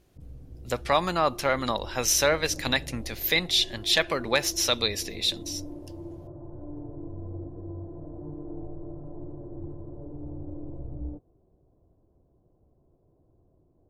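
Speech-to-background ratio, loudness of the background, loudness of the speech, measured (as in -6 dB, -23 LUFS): 16.5 dB, -41.5 LUFS, -25.0 LUFS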